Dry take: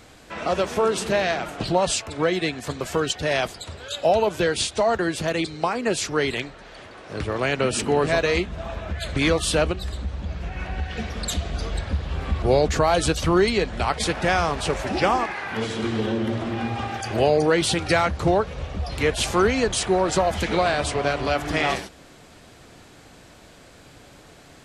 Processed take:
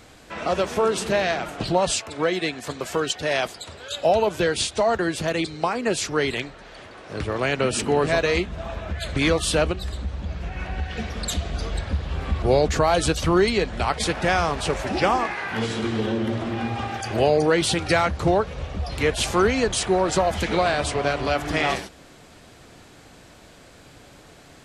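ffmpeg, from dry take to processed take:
-filter_complex "[0:a]asettb=1/sr,asplit=3[a][b][c];[a]atrim=end=1.994[d];[b]atrim=start=1.99:end=3.91,asetpts=PTS-STARTPTS,afade=t=in:d=0.004:c=qsin,afade=t=out:st=1.916:d=0.004:c=qsin,lowshelf=f=130:g=-10[e];[c]atrim=start=3.906[f];[d][e]acrossfade=d=0.004:c1=hsin:c2=qsin[g];[g][f]acrossfade=d=0.004:c1=qsin:c2=hsin,asettb=1/sr,asplit=3[h][i][j];[h]atrim=end=15.234[k];[i]atrim=start=15.23:end=15.8,asetpts=PTS-STARTPTS,afade=t=in:d=0.004:c=qsin,afade=t=out:st=0.566:d=0.004:c=qsin,asplit=2[l][m];[m]adelay=17,volume=-5dB[n];[l][n]amix=inputs=2:normalize=0,atrim=end_sample=25137[o];[j]atrim=start=15.796[p];[k][o]acrossfade=d=0.004:c1=hsin:c2=qsin[q];[q][p]acrossfade=d=0.004:c1=qsin:c2=hsin"

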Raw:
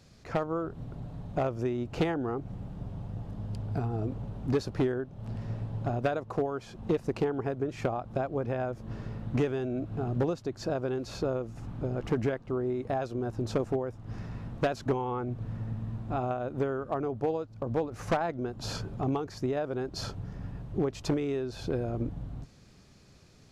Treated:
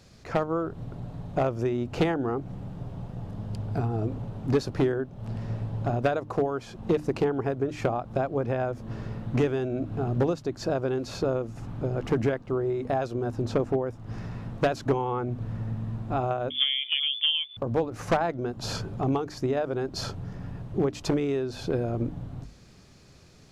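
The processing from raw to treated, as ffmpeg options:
-filter_complex "[0:a]asettb=1/sr,asplit=3[a][b][c];[a]atrim=end=13.454[d];[b]atrim=start=13.45:end=13.86,asetpts=PTS-STARTPTS,afade=t=in:d=0.004:c=qsin,afade=t=out:st=0.406:d=0.004:c=qsin,highshelf=f=5.1k:g=-8[e];[c]atrim=start=13.856[f];[d][e]acrossfade=d=0.004:c1=hsin:c2=qsin[g];[g][f]acrossfade=d=0.004:c1=qsin:c2=hsin,asettb=1/sr,asplit=3[h][i][j];[h]atrim=end=16.504[k];[i]atrim=start=16.5:end=17.57,asetpts=PTS-STARTPTS,afade=t=in:d=0.004:c=qsin,afade=t=out:st=1.066:d=0.004:c=qsin,lowpass=f=3.1k:t=q:w=0.5098,lowpass=f=3.1k:t=q:w=0.6013,lowpass=f=3.1k:t=q:w=0.9,lowpass=f=3.1k:t=q:w=2.563,afreqshift=-3600[l];[j]atrim=start=17.566[m];[k][l]acrossfade=d=0.004:c1=hsin:c2=qsin[n];[n][m]acrossfade=d=0.004:c1=qsin:c2=hsin,bandreject=f=50:t=h:w=6,bandreject=f=100:t=h:w=6,bandreject=f=150:t=h:w=6,bandreject=f=200:t=h:w=6,bandreject=f=250:t=h:w=6,bandreject=f=300:t=h:w=6,volume=4dB"

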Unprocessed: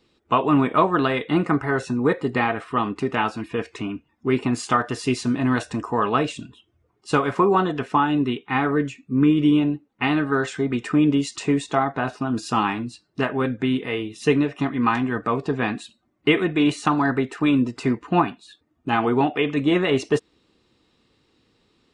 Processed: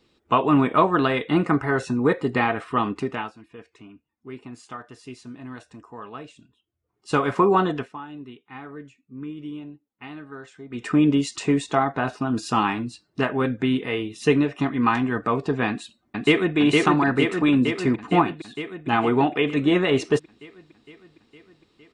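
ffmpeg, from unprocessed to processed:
-filter_complex "[0:a]asplit=2[a][b];[b]afade=t=in:st=15.68:d=0.01,afade=t=out:st=16.57:d=0.01,aecho=0:1:460|920|1380|1840|2300|2760|3220|3680|4140|4600|5060|5520:0.841395|0.588977|0.412284|0.288599|0.202019|0.141413|0.0989893|0.0692925|0.0485048|0.0339533|0.0237673|0.0166371[c];[a][c]amix=inputs=2:normalize=0,asplit=5[d][e][f][g][h];[d]atrim=end=3.34,asetpts=PTS-STARTPTS,afade=t=out:st=2.92:d=0.42:silence=0.141254[i];[e]atrim=start=3.34:end=6.82,asetpts=PTS-STARTPTS,volume=-17dB[j];[f]atrim=start=6.82:end=7.92,asetpts=PTS-STARTPTS,afade=t=in:d=0.42:silence=0.141254,afade=t=out:st=0.92:d=0.18:silence=0.133352[k];[g]atrim=start=7.92:end=10.7,asetpts=PTS-STARTPTS,volume=-17.5dB[l];[h]atrim=start=10.7,asetpts=PTS-STARTPTS,afade=t=in:d=0.18:silence=0.133352[m];[i][j][k][l][m]concat=n=5:v=0:a=1"

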